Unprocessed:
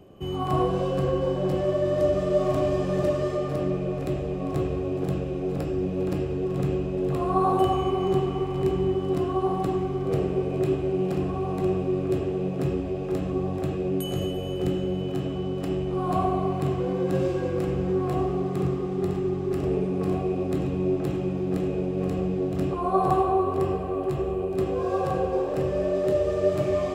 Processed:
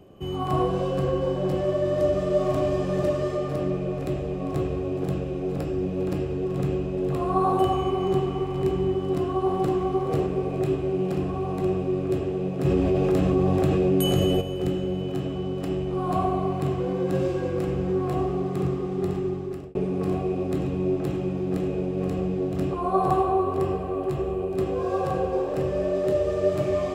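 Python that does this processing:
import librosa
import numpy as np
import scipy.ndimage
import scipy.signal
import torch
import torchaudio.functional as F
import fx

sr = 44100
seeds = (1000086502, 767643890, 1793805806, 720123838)

y = fx.echo_throw(x, sr, start_s=8.95, length_s=0.8, ms=510, feedback_pct=35, wet_db=-4.5)
y = fx.env_flatten(y, sr, amount_pct=70, at=(12.64, 14.4), fade=0.02)
y = fx.edit(y, sr, fx.fade_out_span(start_s=19.08, length_s=0.67, curve='qsin'), tone=tone)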